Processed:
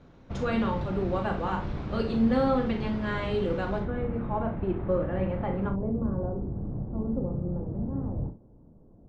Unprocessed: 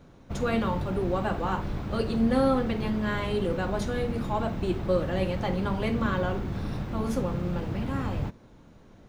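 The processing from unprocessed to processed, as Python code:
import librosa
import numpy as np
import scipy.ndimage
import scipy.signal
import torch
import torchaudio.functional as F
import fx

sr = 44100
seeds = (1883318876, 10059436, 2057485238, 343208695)

y = fx.bessel_lowpass(x, sr, hz=fx.steps((0.0, 4700.0), (3.78, 1500.0), (5.69, 520.0)), order=4)
y = fx.room_early_taps(y, sr, ms=(36, 62), db=(-8.5, -13.0))
y = F.gain(torch.from_numpy(y), -1.5).numpy()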